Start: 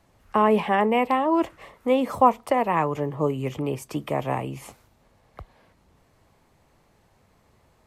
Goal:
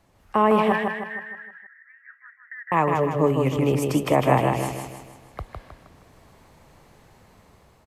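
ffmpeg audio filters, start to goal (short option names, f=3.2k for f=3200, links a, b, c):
-filter_complex "[0:a]dynaudnorm=f=370:g=5:m=7dB,asettb=1/sr,asplit=3[a][b][c];[a]atrim=end=0.724[d];[b]atrim=start=0.72:end=2.72,asetpts=PTS-STARTPTS,afade=t=in:d=0.004:c=qsin,afade=t=out:st=1.996:d=0.004:c=qsin,asuperpass=centerf=1700:order=8:qfactor=3.9[e];[c]atrim=start=2.716[f];[d][e]acrossfade=d=0.004:c1=hsin:c2=qsin[g];[g][f]acrossfade=d=0.004:c1=qsin:c2=hsin,asplit=2[h][i];[i]aecho=0:1:157|314|471|628|785|942:0.631|0.284|0.128|0.0575|0.0259|0.0116[j];[h][j]amix=inputs=2:normalize=0"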